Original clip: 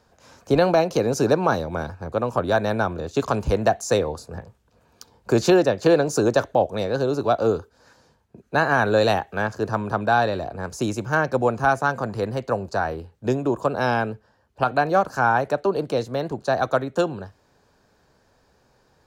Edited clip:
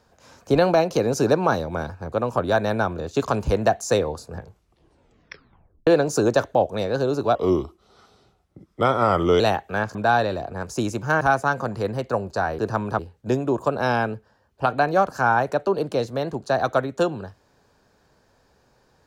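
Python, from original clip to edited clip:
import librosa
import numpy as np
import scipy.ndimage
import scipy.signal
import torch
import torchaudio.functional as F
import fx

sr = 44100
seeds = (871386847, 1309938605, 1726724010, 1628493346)

y = fx.edit(x, sr, fx.tape_stop(start_s=4.36, length_s=1.51),
    fx.speed_span(start_s=7.35, length_s=1.68, speed=0.82),
    fx.move(start_s=9.58, length_s=0.4, to_s=12.97),
    fx.cut(start_s=11.24, length_s=0.35), tone=tone)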